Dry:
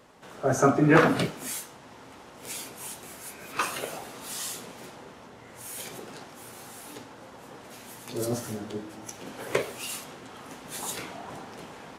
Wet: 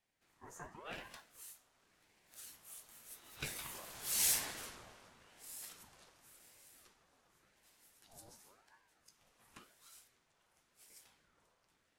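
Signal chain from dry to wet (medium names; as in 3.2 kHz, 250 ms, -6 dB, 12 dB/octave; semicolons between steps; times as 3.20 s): Doppler pass-by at 4.41 s, 16 m/s, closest 2.6 m; tilt EQ +2.5 dB/octave; ring modulator with a swept carrier 780 Hz, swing 70%, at 0.91 Hz; trim +2 dB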